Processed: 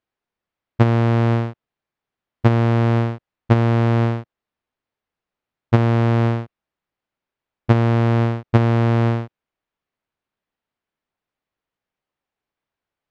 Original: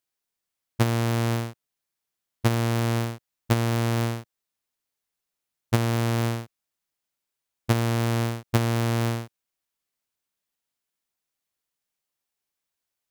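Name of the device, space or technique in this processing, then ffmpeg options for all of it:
phone in a pocket: -af "lowpass=3300,highshelf=frequency=2100:gain=-9,volume=8dB"

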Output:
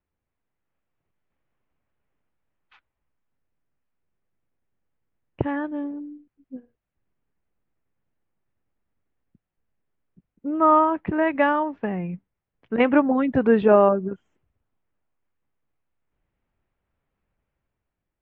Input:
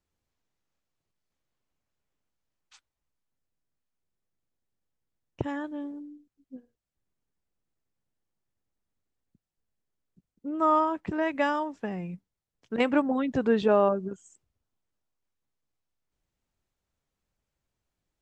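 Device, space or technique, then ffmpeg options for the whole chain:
action camera in a waterproof case: -af "lowpass=frequency=2600:width=0.5412,lowpass=frequency=2600:width=1.3066,dynaudnorm=framelen=140:gausssize=11:maxgain=6.5dB" -ar 44100 -c:a aac -b:a 48k

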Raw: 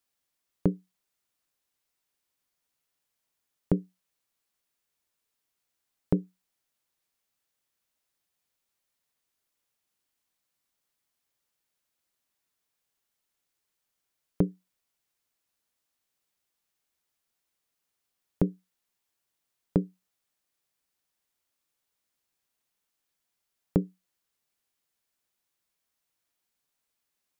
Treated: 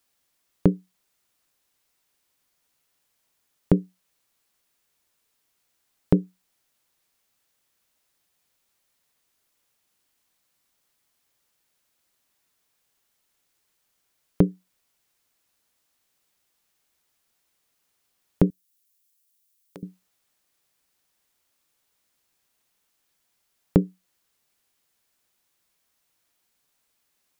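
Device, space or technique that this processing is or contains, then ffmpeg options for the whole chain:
parallel compression: -filter_complex "[0:a]asettb=1/sr,asplit=3[link_01][link_02][link_03];[link_01]atrim=end=18.504[link_04];[link_02]atrim=start=18.5:end=19.83,asetpts=PTS-STARTPTS,afade=type=in:duration=0.004:curve=qsin,afade=type=out:start_time=1.326:duration=0.004:curve=qsin,aderivative[link_05];[link_03]atrim=start=19.826[link_06];[link_04][link_05]acrossfade=duration=0.004:curve1=hsin:curve2=qsin[link_07];[link_07][link_06]acrossfade=duration=0.004:curve1=qsin:curve2=hsin,asplit=2[link_08][link_09];[link_09]acompressor=threshold=-38dB:ratio=6,volume=-8.5dB[link_10];[link_08][link_10]amix=inputs=2:normalize=0,volume=6dB"

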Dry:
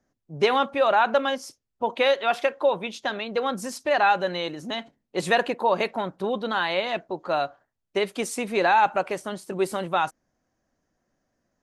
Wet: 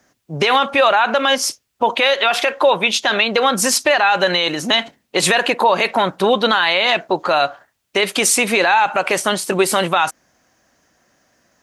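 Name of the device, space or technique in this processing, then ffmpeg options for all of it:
mastering chain: -af "highpass=48,equalizer=frequency=2700:width_type=o:width=0.77:gain=2,acompressor=threshold=-24dB:ratio=2,tiltshelf=frequency=740:gain=-5.5,alimiter=level_in=19dB:limit=-1dB:release=50:level=0:latency=1,volume=-3.5dB"

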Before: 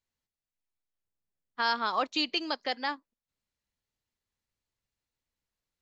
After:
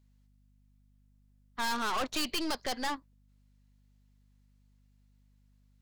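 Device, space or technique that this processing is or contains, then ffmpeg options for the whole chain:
valve amplifier with mains hum: -af "aeval=exprs='(tanh(89.1*val(0)+0.65)-tanh(0.65))/89.1':channel_layout=same,aeval=exprs='val(0)+0.000224*(sin(2*PI*50*n/s)+sin(2*PI*2*50*n/s)/2+sin(2*PI*3*50*n/s)/3+sin(2*PI*4*50*n/s)/4+sin(2*PI*5*50*n/s)/5)':channel_layout=same,volume=9dB"

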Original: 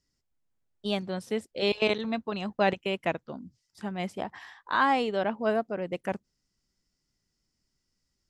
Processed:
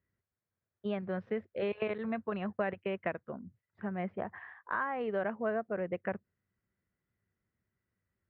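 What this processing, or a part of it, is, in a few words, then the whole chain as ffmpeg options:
bass amplifier: -filter_complex "[0:a]acompressor=threshold=-28dB:ratio=6,highpass=85,equalizer=frequency=97:width_type=q:width=4:gain=7,equalizer=frequency=150:width_type=q:width=4:gain=-4,equalizer=frequency=280:width_type=q:width=4:gain=-9,equalizer=frequency=860:width_type=q:width=4:gain=-6,equalizer=frequency=1700:width_type=q:width=4:gain=3,lowpass=frequency=2100:width=0.5412,lowpass=frequency=2100:width=1.3066,asettb=1/sr,asplit=3[link_01][link_02][link_03];[link_01]atrim=end=3.234[link_04];[link_02]atrim=start=3.23:end=5.01,asetpts=PTS-STARTPTS,afade=type=in:duration=0.004:curve=qsin,afade=type=out:start_time=1.776:duration=0.004:curve=qsin,aemphasis=mode=reproduction:type=75kf[link_05];[link_03]atrim=start=5.006[link_06];[link_04][link_05]acrossfade=duration=0.004:curve1=hsin:curve2=qsin[link_07];[link_07][link_06]acrossfade=duration=0.004:curve1=qsin:curve2=hsin"

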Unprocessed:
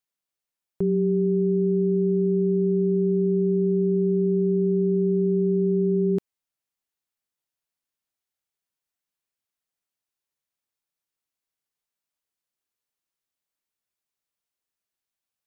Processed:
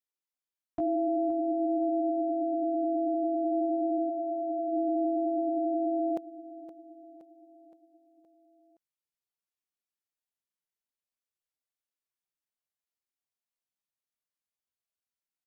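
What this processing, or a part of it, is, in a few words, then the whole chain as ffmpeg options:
chipmunk voice: -filter_complex "[0:a]asetrate=76340,aresample=44100,atempo=0.577676,asplit=3[link_01][link_02][link_03];[link_01]afade=type=out:start_time=4.09:duration=0.02[link_04];[link_02]equalizer=frequency=240:width_type=o:width=1.2:gain=-10,afade=type=in:start_time=4.09:duration=0.02,afade=type=out:start_time=4.71:duration=0.02[link_05];[link_03]afade=type=in:start_time=4.71:duration=0.02[link_06];[link_04][link_05][link_06]amix=inputs=3:normalize=0,aecho=1:1:519|1038|1557|2076|2595:0.2|0.106|0.056|0.0297|0.0157,volume=-6dB"

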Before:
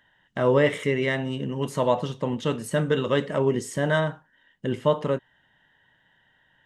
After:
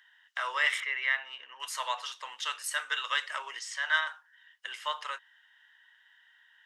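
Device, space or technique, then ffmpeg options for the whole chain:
headphones lying on a table: -filter_complex "[0:a]asettb=1/sr,asplit=3[link_01][link_02][link_03];[link_01]atrim=end=0.804[link_04];[link_02]atrim=start=0.8:end=1.6,asetpts=PTS-STARTPTS,afade=type=in:duration=0.004:curve=qsin,afade=type=out:start_time=0.796:duration=0.004:curve=qsin,lowpass=2500[link_05];[link_03]atrim=start=1.596[link_06];[link_04][link_05]acrossfade=duration=0.004:curve1=hsin:curve2=qsin[link_07];[link_07][link_06]acrossfade=duration=0.004:curve1=qsin:curve2=hsin,highpass=frequency=1200:width=0.5412,highpass=frequency=1200:width=1.3066,equalizer=frequency=5200:width_type=o:width=0.39:gain=4.5,asettb=1/sr,asplit=3[link_08][link_09][link_10];[link_08]atrim=end=3.594[link_11];[link_09]atrim=start=3.59:end=4.07,asetpts=PTS-STARTPTS,afade=type=in:duration=0.004:curve=qsin,afade=type=out:start_time=0.476:duration=0.004:curve=qsin,acrossover=split=580 6400:gain=0.2 1 0.0891[link_12][link_13][link_14];[link_12][link_13][link_14]amix=inputs=3:normalize=0[link_15];[link_10]atrim=start=4.066[link_16];[link_11][link_15]acrossfade=duration=0.004:curve1=hsin:curve2=qsin[link_17];[link_17][link_16]acrossfade=duration=0.004:curve1=qsin:curve2=hsin,volume=2.5dB"

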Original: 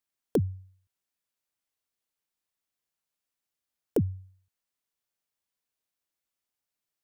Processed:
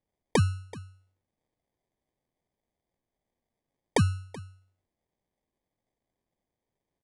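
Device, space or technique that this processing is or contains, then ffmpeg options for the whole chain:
crushed at another speed: -af "equalizer=frequency=1400:width=1.5:gain=5,aecho=1:1:1.5:0.55,asetrate=88200,aresample=44100,acrusher=samples=16:mix=1:aa=0.000001,asetrate=22050,aresample=44100,aecho=1:1:380:0.112,volume=2.5dB"

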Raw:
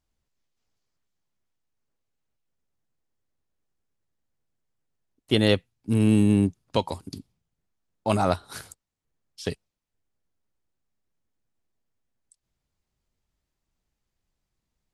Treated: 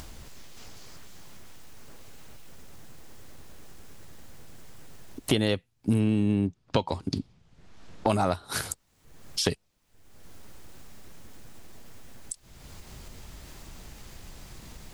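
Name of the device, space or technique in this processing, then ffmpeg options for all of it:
upward and downward compression: -filter_complex "[0:a]acompressor=mode=upward:threshold=-27dB:ratio=2.5,acompressor=threshold=-27dB:ratio=8,asettb=1/sr,asplit=3[link_01][link_02][link_03];[link_01]atrim=end=6.004[link_04];[link_02]atrim=start=6:end=8.07,asetpts=PTS-STARTPTS,afade=type=in:duration=0.004:curve=qsin,afade=type=out:start_time=2.066:duration=0.004:curve=qsin,lowpass=5100[link_05];[link_03]atrim=start=8.066[link_06];[link_04][link_05]acrossfade=duration=0.004:curve1=hsin:curve2=qsin[link_07];[link_07][link_06]acrossfade=duration=0.004:curve1=qsin:curve2=hsin,volume=6.5dB"

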